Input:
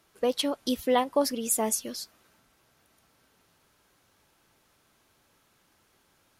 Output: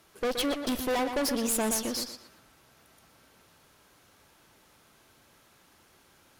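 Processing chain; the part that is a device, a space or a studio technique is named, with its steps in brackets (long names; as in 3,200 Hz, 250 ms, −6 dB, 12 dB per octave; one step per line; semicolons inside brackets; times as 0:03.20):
rockabilly slapback (tube saturation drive 34 dB, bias 0.6; tape delay 120 ms, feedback 31%, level −6 dB, low-pass 4,900 Hz)
level +8 dB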